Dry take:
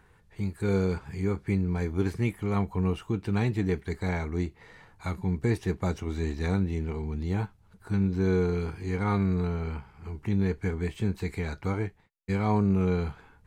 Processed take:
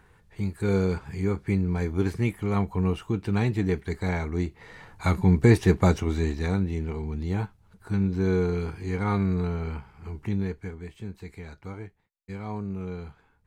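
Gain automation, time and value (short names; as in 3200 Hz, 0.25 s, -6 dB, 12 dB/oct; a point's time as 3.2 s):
4.43 s +2 dB
5.11 s +9 dB
5.84 s +9 dB
6.49 s +1 dB
10.23 s +1 dB
10.8 s -9 dB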